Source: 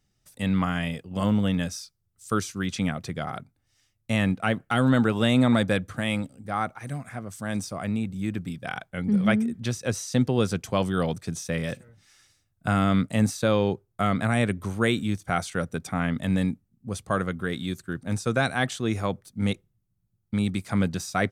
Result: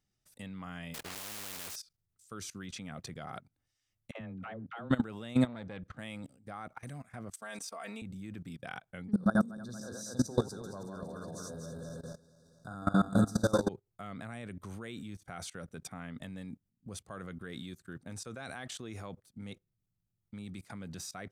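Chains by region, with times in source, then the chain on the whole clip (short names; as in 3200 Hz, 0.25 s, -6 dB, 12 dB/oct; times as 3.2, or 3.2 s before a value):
0.94–1.76 block floating point 3-bit + spectral compressor 4:1
4.11–4.9 compressor 2:1, threshold -28 dBFS + tape spacing loss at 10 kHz 30 dB + dispersion lows, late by 0.1 s, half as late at 490 Hz
5.47–5.99 air absorption 130 m + core saturation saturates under 430 Hz
7.33–8.02 HPF 570 Hz + comb 4.4 ms, depth 99%
9.11–13.69 regenerating reverse delay 0.116 s, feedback 65%, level -2 dB + brick-wall FIR band-stop 1700–3500 Hz
18.1–18.99 de-esser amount 30% + bell 160 Hz -3.5 dB 1.2 oct
whole clip: low shelf 130 Hz -3 dB; level quantiser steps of 20 dB; gain -3 dB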